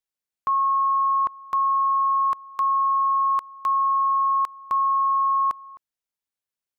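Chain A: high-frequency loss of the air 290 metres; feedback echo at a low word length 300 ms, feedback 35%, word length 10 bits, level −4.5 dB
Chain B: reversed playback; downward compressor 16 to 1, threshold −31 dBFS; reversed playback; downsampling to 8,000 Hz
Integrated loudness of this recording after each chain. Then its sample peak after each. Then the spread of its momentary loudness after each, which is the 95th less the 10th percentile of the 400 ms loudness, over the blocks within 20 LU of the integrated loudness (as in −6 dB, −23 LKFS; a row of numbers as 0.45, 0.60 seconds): −19.0, −33.5 LKFS; −13.5, −18.0 dBFS; 8, 4 LU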